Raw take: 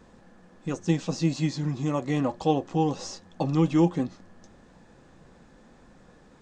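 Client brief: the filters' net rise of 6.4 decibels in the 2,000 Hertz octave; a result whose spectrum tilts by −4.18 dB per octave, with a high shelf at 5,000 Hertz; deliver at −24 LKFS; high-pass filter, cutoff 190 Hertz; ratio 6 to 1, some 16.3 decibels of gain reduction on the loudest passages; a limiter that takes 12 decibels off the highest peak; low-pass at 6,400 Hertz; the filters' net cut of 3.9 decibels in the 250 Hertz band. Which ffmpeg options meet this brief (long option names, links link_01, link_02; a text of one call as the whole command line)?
ffmpeg -i in.wav -af "highpass=190,lowpass=6400,equalizer=frequency=250:width_type=o:gain=-4,equalizer=frequency=2000:width_type=o:gain=6.5,highshelf=frequency=5000:gain=6.5,acompressor=threshold=-37dB:ratio=6,volume=23dB,alimiter=limit=-12dB:level=0:latency=1" out.wav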